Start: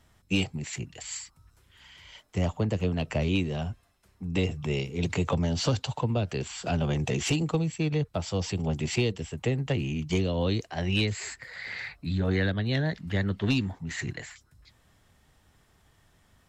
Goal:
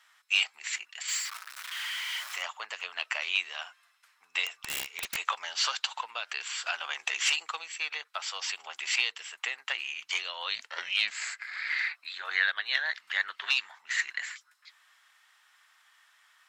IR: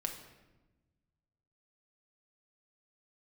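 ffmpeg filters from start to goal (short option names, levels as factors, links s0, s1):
-filter_complex "[0:a]asettb=1/sr,asplit=3[s0][s1][s2];[s0]atrim=end=1.084[s3];[s1]atrim=start=1.08:end=2.43,asetpts=PTS-STARTPTS,afade=t=in:d=0.004:c=qsin,afade=t=out:st=1.346:d=0.004:c=qsin,aeval=exprs='val(0)+0.5*0.015*sgn(val(0))':c=same[s4];[s2]atrim=start=2.426[s5];[s3][s4]acrossfade=d=0.004:c1=hsin:c2=qsin[s6];[s6][s5]acrossfade=d=0.004:c1=qsin:c2=hsin,highpass=f=1200:w=0.5412,highpass=f=1200:w=1.3066,highshelf=f=4600:g=-10,asettb=1/sr,asplit=3[s7][s8][s9];[s7]atrim=end=4.464[s10];[s8]atrim=start=4.46:end=5.16,asetpts=PTS-STARTPTS,afade=t=in:d=0.004:c=qsin,afade=t=out:st=0.696:d=0.004:c=qsin,aeval=exprs='(mod(56.2*val(0)+1,2)-1)/56.2':c=same[s11];[s9]atrim=start=5.156[s12];[s10][s11]acrossfade=d=0.004:c1=hsin:c2=qsin[s13];[s13][s12]acrossfade=d=0.004:c1=qsin:c2=hsin,asettb=1/sr,asplit=3[s14][s15][s16];[s14]atrim=end=10.554[s17];[s15]atrim=start=10.55:end=11.7,asetpts=PTS-STARTPTS,afade=t=in:d=0.004:c=qsin,afade=t=out:st=1.146:d=0.004:c=qsin,aeval=exprs='val(0)*sin(2*PI*210*n/s)':c=same[s18];[s16]atrim=start=11.696[s19];[s17][s18]acrossfade=d=0.004:c1=hsin:c2=qsin[s20];[s20][s19]acrossfade=d=0.004:c1=qsin:c2=hsin,volume=2.82"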